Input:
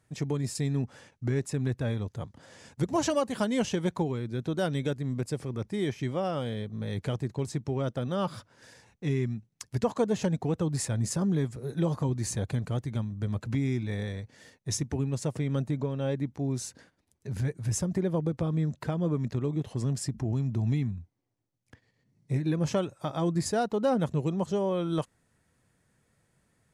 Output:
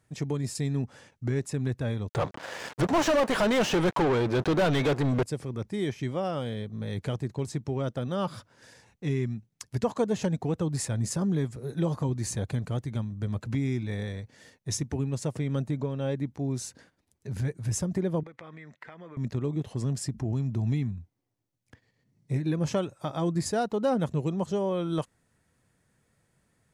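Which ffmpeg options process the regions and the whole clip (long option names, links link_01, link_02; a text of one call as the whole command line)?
ffmpeg -i in.wav -filter_complex "[0:a]asettb=1/sr,asplit=3[link_01][link_02][link_03];[link_01]atrim=end=2.094[link_04];[link_02]atrim=start=2.09:end=5.23,asetpts=PTS-STARTPTS,afade=type=in:duration=0.004:curve=qsin,afade=type=out:start_time=3.136:duration=0.004:curve=qsin,equalizer=frequency=230:width=2.8:gain=-5.5,aeval=exprs='sgn(val(0))*max(abs(val(0))-0.00188,0)':channel_layout=same,asplit=2[link_05][link_06];[link_06]highpass=frequency=720:poles=1,volume=33dB,asoftclip=type=tanh:threshold=-16dB[link_07];[link_05][link_07]amix=inputs=2:normalize=0,lowpass=frequency=1700:poles=1,volume=-6dB[link_08];[link_03]atrim=start=5.226[link_09];[link_04][link_08]acrossfade=duration=0.004:curve1=hsin:curve2=qsin[link_10];[link_10][link_09]acrossfade=duration=0.004:curve1=qsin:curve2=hsin,asettb=1/sr,asplit=3[link_11][link_12][link_13];[link_11]atrim=end=18.234[link_14];[link_12]atrim=start=18.23:end=19.17,asetpts=PTS-STARTPTS,afade=type=in:duration=0.004:curve=qsin,afade=type=out:start_time=0.936:duration=0.004:curve=qsin,bandpass=frequency=1600:width_type=q:width=0.71,equalizer=frequency=2000:width_type=o:width=0.46:gain=13.5,acompressor=threshold=-41dB:ratio=6:attack=3.2:release=140:knee=1:detection=peak[link_15];[link_13]atrim=start=19.166[link_16];[link_14][link_15]acrossfade=duration=0.004:curve1=hsin:curve2=qsin[link_17];[link_17][link_16]acrossfade=duration=0.004:curve1=qsin:curve2=hsin" out.wav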